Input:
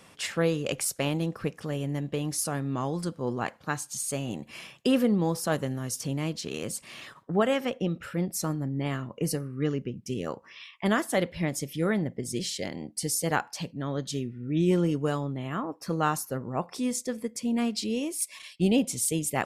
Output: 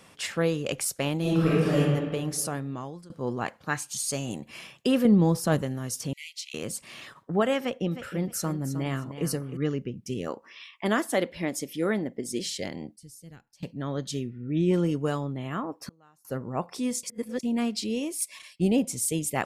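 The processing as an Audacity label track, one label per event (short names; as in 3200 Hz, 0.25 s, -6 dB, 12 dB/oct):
1.210000	1.780000	reverb throw, RT60 1.7 s, DRR -9.5 dB
2.470000	3.100000	fade out, to -22 dB
3.710000	4.380000	bell 1800 Hz -> 10000 Hz +11 dB
5.050000	5.620000	low shelf 290 Hz +9 dB
6.130000	6.540000	brick-wall FIR high-pass 1900 Hz
7.600000	9.570000	feedback echo 0.311 s, feedback 22%, level -11 dB
10.280000	12.460000	resonant low shelf 190 Hz -7.5 dB, Q 1.5
12.960000	13.630000	passive tone stack bass-middle-treble 10-0-1
14.300000	14.740000	LPF 3500 Hz 6 dB/oct
15.780000	16.250000	flipped gate shuts at -27 dBFS, range -33 dB
17.030000	17.430000	reverse
18.410000	19.090000	bell 3400 Hz -6 dB 0.89 oct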